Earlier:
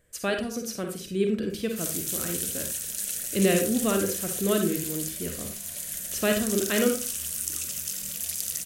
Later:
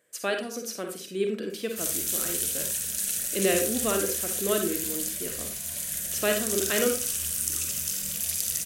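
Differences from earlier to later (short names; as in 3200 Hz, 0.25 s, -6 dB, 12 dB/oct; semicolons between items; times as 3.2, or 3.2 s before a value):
speech: add HPF 300 Hz 12 dB/oct; background: send +9.0 dB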